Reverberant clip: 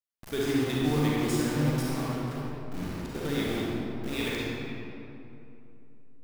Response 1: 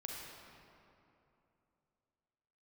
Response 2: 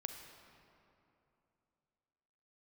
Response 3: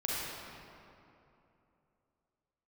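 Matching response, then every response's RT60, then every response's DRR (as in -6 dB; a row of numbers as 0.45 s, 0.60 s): 3; 2.9 s, 2.9 s, 2.9 s; -2.0 dB, 5.0 dB, -6.5 dB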